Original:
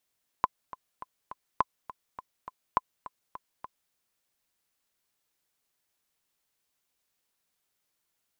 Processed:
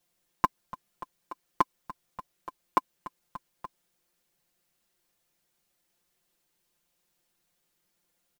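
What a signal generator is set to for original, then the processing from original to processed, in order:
metronome 206 bpm, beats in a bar 4, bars 3, 1020 Hz, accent 17 dB -9.5 dBFS
in parallel at -11.5 dB: sample-and-hold 34×; on the sum: comb 5.7 ms, depth 98%

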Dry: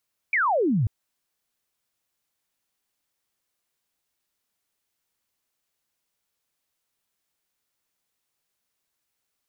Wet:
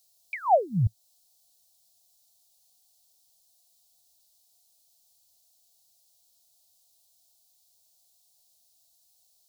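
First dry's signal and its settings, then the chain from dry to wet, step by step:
laser zap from 2400 Hz, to 97 Hz, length 0.54 s sine, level -19 dB
EQ curve 110 Hz 0 dB, 180 Hz -5 dB, 280 Hz -27 dB, 710 Hz +7 dB, 1500 Hz -30 dB, 4100 Hz +9 dB; in parallel at -1 dB: compressor, threshold -34 dBFS

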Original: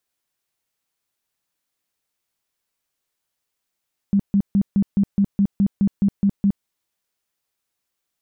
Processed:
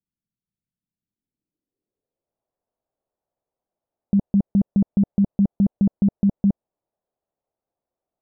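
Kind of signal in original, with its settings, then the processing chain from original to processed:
tone bursts 199 Hz, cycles 13, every 0.21 s, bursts 12, -13 dBFS
low-pass sweep 190 Hz -> 660 Hz, 0.92–2.43

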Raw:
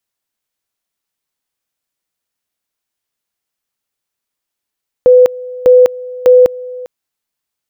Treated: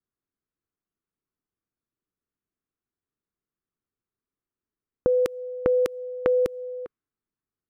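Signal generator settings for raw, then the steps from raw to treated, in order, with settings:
two-level tone 501 Hz -2 dBFS, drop 20.5 dB, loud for 0.20 s, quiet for 0.40 s, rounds 3
low-pass opened by the level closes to 810 Hz, open at -6.5 dBFS; band shelf 690 Hz -10.5 dB 1.1 oct; compressor 5:1, threshold -20 dBFS

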